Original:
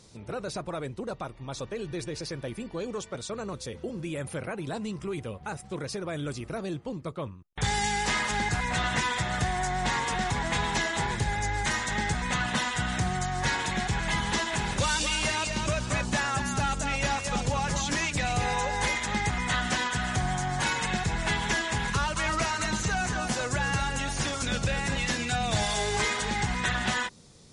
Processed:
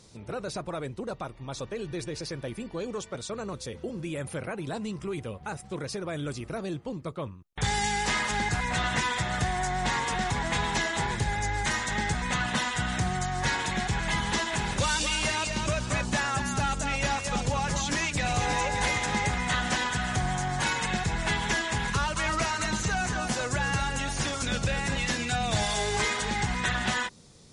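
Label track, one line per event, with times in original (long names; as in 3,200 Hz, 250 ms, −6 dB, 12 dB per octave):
17.660000	18.770000	delay throw 580 ms, feedback 50%, level −7 dB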